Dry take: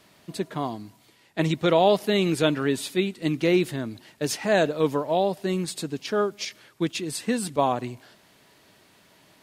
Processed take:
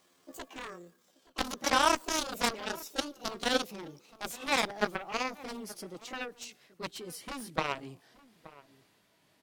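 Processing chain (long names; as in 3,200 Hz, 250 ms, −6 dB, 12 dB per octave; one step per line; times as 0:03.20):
pitch glide at a constant tempo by +10 semitones ending unshifted
harmonic generator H 3 −22 dB, 5 −18 dB, 7 −11 dB, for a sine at −6.5 dBFS
slap from a distant wall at 150 metres, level −19 dB
level −4.5 dB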